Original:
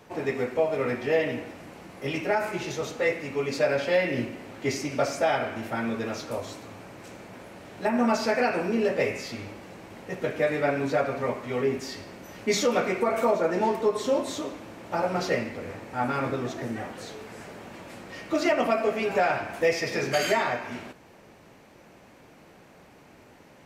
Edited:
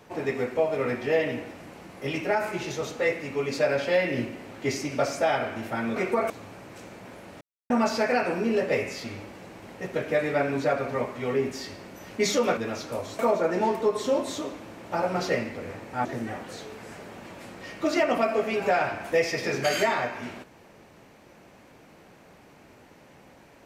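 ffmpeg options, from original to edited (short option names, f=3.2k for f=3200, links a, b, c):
-filter_complex "[0:a]asplit=8[a][b][c][d][e][f][g][h];[a]atrim=end=5.962[i];[b]atrim=start=12.848:end=13.192[j];[c]atrim=start=6.578:end=7.69,asetpts=PTS-STARTPTS,afade=t=out:st=1.108:d=0.004:c=hsin[k];[d]atrim=start=7.69:end=7.98,asetpts=PTS-STARTPTS,volume=0[l];[e]atrim=start=7.98:end=12.852,asetpts=PTS-STARTPTS,afade=t=in:d=0.004:c=hsin[m];[f]atrim=start=5.958:end=6.582[n];[g]atrim=start=13.188:end=16.052[o];[h]atrim=start=16.538[p];[i][j]acrossfade=d=0.004:c1=hsin:c2=hsin[q];[k][l][m]concat=n=3:v=0:a=1[r];[q][r]acrossfade=d=0.004:c1=hsin:c2=hsin[s];[s][n]acrossfade=d=0.004:c1=hsin:c2=hsin[t];[t][o]acrossfade=d=0.004:c1=hsin:c2=hsin[u];[u][p]acrossfade=d=0.004:c1=hsin:c2=hsin"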